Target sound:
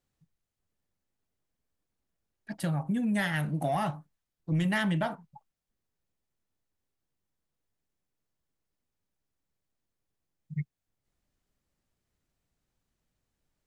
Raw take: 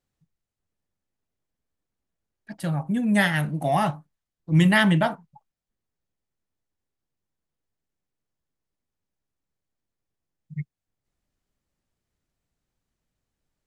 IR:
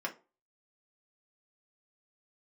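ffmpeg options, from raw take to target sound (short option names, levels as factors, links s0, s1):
-af "asoftclip=type=tanh:threshold=0.282,acompressor=threshold=0.0447:ratio=4"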